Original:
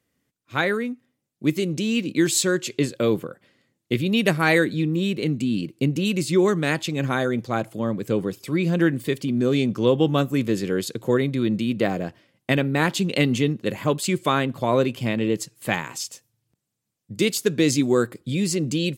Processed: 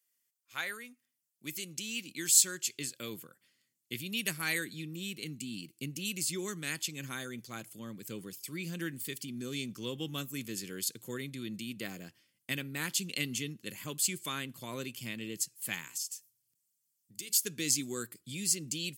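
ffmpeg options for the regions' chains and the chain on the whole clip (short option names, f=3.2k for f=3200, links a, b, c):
-filter_complex "[0:a]asettb=1/sr,asplit=3[a][b][c];[a]atrim=end=15.884[d];[b]atrim=start=15.88:end=17.33,asetpts=PTS-STARTPTS,afade=t=in:d=0.004:c=qsin,afade=t=out:st=1.446:d=0.004:c=qsin,bass=f=250:g=-3,treble=f=4k:g=3,acompressor=threshold=-38dB:ratio=2:attack=3.2:release=140:knee=1:detection=peak,bandreject=f=106.6:t=h:w=4,bandreject=f=213.2:t=h:w=4,bandreject=f=319.8:t=h:w=4,bandreject=f=426.4:t=h:w=4,bandreject=f=533:t=h:w=4,bandreject=f=639.6:t=h:w=4,bandreject=f=746.2:t=h:w=4,bandreject=f=852.8:t=h:w=4,bandreject=f=959.4:t=h:w=4,bandreject=f=1.066k:t=h:w=4,bandreject=f=1.1726k:t=h:w=4,bandreject=f=1.2792k:t=h:w=4[e];[c]atrim=start=17.326[f];[d][e]acrossfade=d=0.004:c1=hsin:c2=qsin[g];[g][f]acrossfade=d=0.004:c1=qsin:c2=hsin,aderivative,bandreject=f=3.8k:w=12,asubboost=boost=9:cutoff=220"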